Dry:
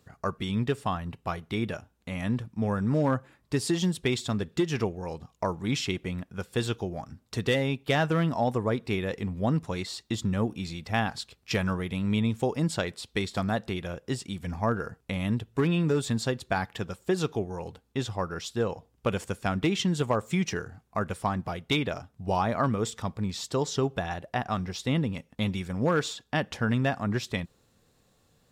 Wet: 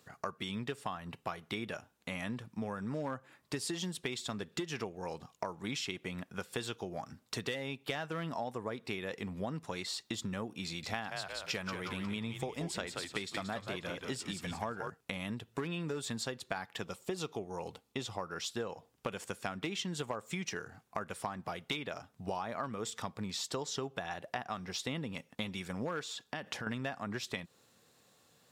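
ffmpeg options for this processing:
-filter_complex "[0:a]asettb=1/sr,asplit=3[s0][s1][s2];[s0]atrim=end=10.654[s3];[s1]atrim=start=10.65:end=14.9,asetpts=PTS-STARTPTS,afade=t=in:d=0.004:c=qsin,afade=t=out:st=4.246:d=0.004:c=qsin,asplit=6[s4][s5][s6][s7][s8][s9];[s5]adelay=179,afreqshift=-90,volume=0.473[s10];[s6]adelay=358,afreqshift=-180,volume=0.188[s11];[s7]adelay=537,afreqshift=-270,volume=0.0759[s12];[s8]adelay=716,afreqshift=-360,volume=0.0302[s13];[s9]adelay=895,afreqshift=-450,volume=0.0122[s14];[s4][s10][s11][s12][s13][s14]amix=inputs=6:normalize=0,atrim=end_sample=187425[s15];[s2]atrim=start=14.896[s16];[s3][s15]acrossfade=d=0.004:c1=hsin:c2=qsin[s17];[s17][s16]acrossfade=d=0.004:c1=qsin:c2=hsin,asettb=1/sr,asplit=3[s18][s19][s20];[s18]atrim=end=16.824[s21];[s19]atrim=start=16.82:end=18.26,asetpts=PTS-STARTPTS,afade=t=in:d=0.004:c=qsin,afade=t=out:st=1.436:d=0.004:c=qsin,equalizer=f=1600:t=o:w=0.21:g=-10[s22];[s20]atrim=start=18.256[s23];[s21][s22]acrossfade=d=0.004:c1=hsin:c2=qsin[s24];[s24][s23]acrossfade=d=0.004:c1=qsin:c2=hsin,asettb=1/sr,asplit=3[s25][s26][s27];[s25]atrim=end=26.024[s28];[s26]atrim=start=26.02:end=26.67,asetpts=PTS-STARTPTS,afade=t=in:d=0.004:c=qsin,afade=t=out:st=0.646:d=0.004:c=qsin,acompressor=threshold=0.0224:ratio=6:attack=3.2:release=140:knee=1:detection=peak[s29];[s27]atrim=start=26.666[s30];[s28][s29]acrossfade=d=0.004:c1=hsin:c2=qsin[s31];[s31][s30]acrossfade=d=0.004:c1=qsin:c2=hsin,highpass=120,lowshelf=f=500:g=-7.5,acompressor=threshold=0.0126:ratio=6,volume=1.41"

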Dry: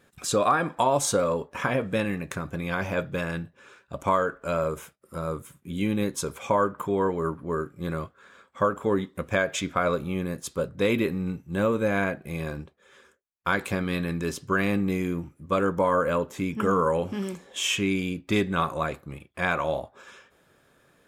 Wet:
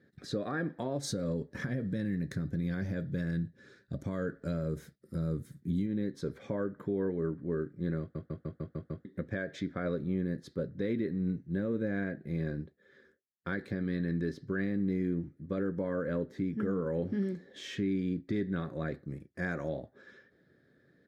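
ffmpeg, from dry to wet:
-filter_complex "[0:a]asplit=3[s0][s1][s2];[s0]afade=t=out:st=1.02:d=0.02[s3];[s1]bass=f=250:g=8,treble=f=4000:g=14,afade=t=in:st=1.02:d=0.02,afade=t=out:st=5.85:d=0.02[s4];[s2]afade=t=in:st=5.85:d=0.02[s5];[s3][s4][s5]amix=inputs=3:normalize=0,asettb=1/sr,asplit=3[s6][s7][s8];[s6]atrim=end=19.054[s9];[s7]atrim=start=19.05:end=19.69,asetpts=PTS-STARTPTS,afade=t=in:d=0.004:c=qsin,afade=t=out:st=0.636:d=0.004:c=qsin,highshelf=f=4700:t=q:w=3:g=8[s10];[s8]atrim=start=19.686[s11];[s9][s10]acrossfade=d=0.004:c1=hsin:c2=qsin[s12];[s12][s11]acrossfade=d=0.004:c1=qsin:c2=hsin,asplit=8[s13][s14][s15][s16][s17][s18][s19][s20];[s13]atrim=end=8.152[s21];[s14]atrim=start=7.998:end=8.152[s22];[s15]atrim=start=7.998:end=8.152[s23];[s16]atrim=start=7.998:end=8.152[s24];[s17]atrim=start=7.998:end=8.152[s25];[s18]atrim=start=7.998:end=8.152[s26];[s19]atrim=start=7.998:end=8.152[s27];[s20]atrim=start=9.048[s28];[s21][s22]acrossfade=d=0.004:c1=hsin:c2=hsin[s29];[s29][s23]acrossfade=d=0.004:c1=hsin:c2=hsin[s30];[s30][s24]acrossfade=d=0.004:c1=hsin:c2=hsin[s31];[s31][s25]acrossfade=d=0.004:c1=hsin:c2=hsin[s32];[s32][s26]acrossfade=d=0.004:c1=hsin:c2=hsin[s33];[s33][s27]acrossfade=d=0.004:c1=hsin:c2=hsin[s34];[s34][s28]acrossfade=d=0.004:c1=hsin:c2=hsin,firequalizer=gain_entry='entry(320,0);entry(1000,-22);entry(1800,-2);entry(2600,-23);entry(4100,-8);entry(7200,-26)':delay=0.05:min_phase=1,alimiter=limit=0.0668:level=0:latency=1:release=282,highpass=99"

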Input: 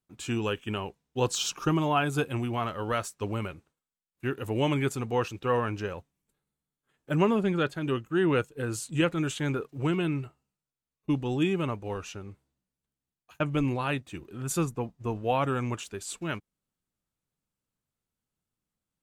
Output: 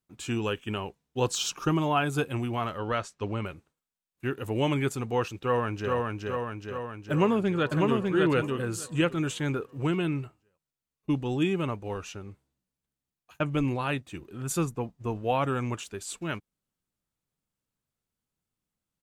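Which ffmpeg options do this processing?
-filter_complex "[0:a]asettb=1/sr,asplit=3[s0][s1][s2];[s0]atrim=end=2.784[s3];[s1]atrim=start=2.78:end=3.46,asetpts=PTS-STARTPTS,afade=t=in:d=0.004:c=qsin,afade=t=out:st=0.676:d=0.004:c=qsin,lowpass=5500[s4];[s2]atrim=start=3.456[s5];[s3][s4]acrossfade=d=0.004:c1=hsin:c2=qsin[s6];[s6][s5]acrossfade=d=0.004:c1=qsin:c2=hsin,asplit=2[s7][s8];[s8]afade=t=in:st=5.38:d=0.01,afade=t=out:st=5.95:d=0.01,aecho=0:1:420|840|1260|1680|2100|2520|2940|3360|3780|4200|4620:0.794328|0.516313|0.335604|0.218142|0.141793|0.0921652|0.0599074|0.0389398|0.0253109|0.0164521|0.0106938[s9];[s7][s9]amix=inputs=2:normalize=0,asplit=2[s10][s11];[s11]afade=t=in:st=7.11:d=0.01,afade=t=out:st=8.06:d=0.01,aecho=0:1:600|1200|1800:0.749894|0.112484|0.0168726[s12];[s10][s12]amix=inputs=2:normalize=0"

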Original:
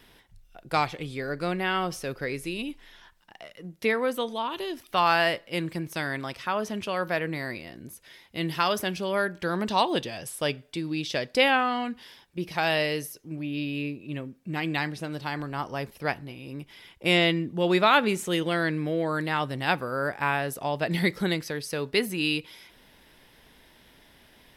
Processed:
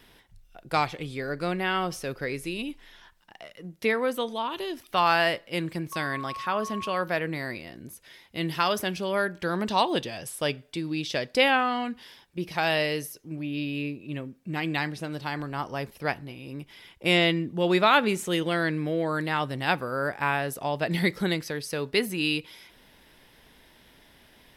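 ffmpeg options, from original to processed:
-filter_complex "[0:a]asettb=1/sr,asplit=3[s0][s1][s2];[s0]atrim=end=5.924[s3];[s1]atrim=start=5.92:end=7.01,asetpts=PTS-STARTPTS,afade=t=in:d=0.004:c=qsin,afade=t=out:st=1.086:d=0.004:c=qsin,aeval=exprs='val(0)+0.02*sin(2*PI*1100*n/s)':c=same[s4];[s2]atrim=start=7.006[s5];[s3][s4]acrossfade=d=0.004:c1=hsin:c2=qsin[s6];[s6][s5]acrossfade=d=0.004:c1=qsin:c2=hsin"

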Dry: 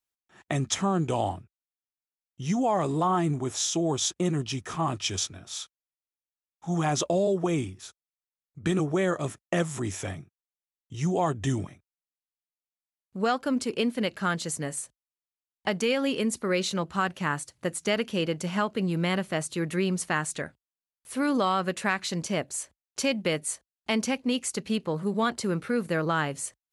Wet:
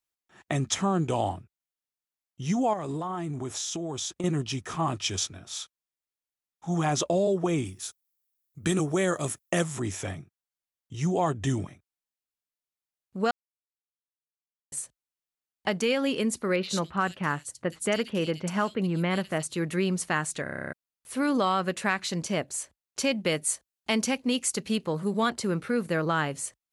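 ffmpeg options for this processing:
-filter_complex "[0:a]asettb=1/sr,asplit=3[s0][s1][s2];[s0]atrim=end=2.734[s3];[s1]atrim=start=2.73:end=4.24,asetpts=PTS-STARTPTS,afade=t=in:d=0.004:c=qsin,afade=t=out:st=1.506:d=0.004:c=qsin,acompressor=threshold=0.0355:ratio=6:attack=3.2:release=140:knee=1:detection=peak[s4];[s2]atrim=start=4.236[s5];[s3][s4]acrossfade=d=0.004:c1=hsin:c2=qsin[s6];[s6][s5]acrossfade=d=0.004:c1=qsin:c2=hsin,asettb=1/sr,asplit=3[s7][s8][s9];[s7]atrim=end=7.654[s10];[s8]atrim=start=7.65:end=9.64,asetpts=PTS-STARTPTS,afade=t=in:d=0.004:c=qsin,afade=t=out:st=1.986:d=0.004:c=qsin,aemphasis=mode=production:type=50fm[s11];[s9]atrim=start=9.636[s12];[s10][s11]acrossfade=d=0.004:c1=hsin:c2=qsin[s13];[s13][s12]acrossfade=d=0.004:c1=qsin:c2=hsin,asettb=1/sr,asplit=3[s14][s15][s16];[s14]atrim=end=16.564[s17];[s15]atrim=start=16.56:end=19.43,asetpts=PTS-STARTPTS,afade=t=in:d=0.004:c=qsin,afade=t=out:st=2.866:d=0.004:c=qsin,acrossover=split=3300[s18][s19];[s19]adelay=70[s20];[s18][s20]amix=inputs=2:normalize=0,atrim=end_sample=126567[s21];[s16]atrim=start=19.426[s22];[s17][s21]acrossfade=d=0.004:c1=hsin:c2=qsin[s23];[s23][s22]acrossfade=d=0.004:c1=qsin:c2=hsin,asettb=1/sr,asplit=3[s24][s25][s26];[s24]atrim=end=23.274[s27];[s25]atrim=start=23.27:end=25.3,asetpts=PTS-STARTPTS,afade=t=in:d=0.004:c=qsin,afade=t=out:st=2.026:d=0.004:c=qsin,highshelf=f=4700:g=5[s28];[s26]atrim=start=25.296[s29];[s27][s28]acrossfade=d=0.004:c1=hsin:c2=qsin[s30];[s30][s29]acrossfade=d=0.004:c1=qsin:c2=hsin,asplit=13[s31][s32][s33][s34][s35][s36][s37][s38][s39][s40][s41][s42][s43];[s31]atrim=end=13.31,asetpts=PTS-STARTPTS,afade=t=out:st=13.306:d=0.004:c=hsin[s44];[s32]atrim=start=13.31:end=14.72,asetpts=PTS-STARTPTS,volume=0[s45];[s33]atrim=start=14.72:end=20.462,asetpts=PTS-STARTPTS,afade=t=in:d=0.004:c=hsin[s46];[s34]atrim=start=20.428:end=20.462[s47];[s35]atrim=start=20.428:end=20.462[s48];[s36]atrim=start=20.428:end=20.462[s49];[s37]atrim=start=20.428:end=20.462[s50];[s38]atrim=start=20.428:end=20.462[s51];[s39]atrim=start=20.428:end=20.462[s52];[s40]atrim=start=20.428:end=20.462[s53];[s41]atrim=start=20.428:end=20.462[s54];[s42]atrim=start=20.428:end=20.462[s55];[s43]atrim=start=20.728[s56];[s44][s45][s46]concat=n=3:v=0:a=1[s57];[s57][s47]acrossfade=d=0.004:c1=hsin:c2=hsin[s58];[s58][s48]acrossfade=d=0.004:c1=hsin:c2=hsin[s59];[s59][s49]acrossfade=d=0.004:c1=hsin:c2=hsin[s60];[s60][s50]acrossfade=d=0.004:c1=hsin:c2=hsin[s61];[s61][s51]acrossfade=d=0.004:c1=hsin:c2=hsin[s62];[s62][s52]acrossfade=d=0.004:c1=hsin:c2=hsin[s63];[s63][s53]acrossfade=d=0.004:c1=hsin:c2=hsin[s64];[s64][s54]acrossfade=d=0.004:c1=hsin:c2=hsin[s65];[s65][s55]acrossfade=d=0.004:c1=hsin:c2=hsin[s66];[s66][s56]acrossfade=d=0.004:c1=hsin:c2=hsin"

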